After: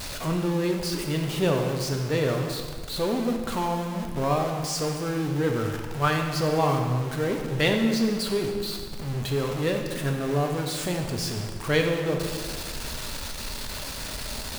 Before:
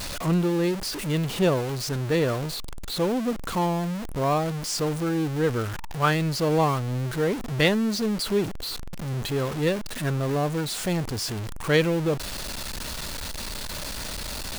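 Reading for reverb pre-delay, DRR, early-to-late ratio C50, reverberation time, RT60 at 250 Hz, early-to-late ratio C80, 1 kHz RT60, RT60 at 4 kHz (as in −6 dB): 4 ms, 2.5 dB, 4.5 dB, 1.7 s, 1.7 s, 6.0 dB, 1.7 s, 1.4 s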